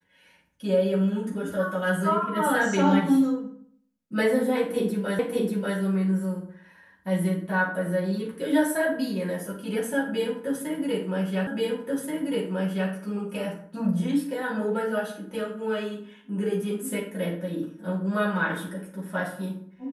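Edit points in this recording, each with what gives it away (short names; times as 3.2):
5.19 repeat of the last 0.59 s
11.47 repeat of the last 1.43 s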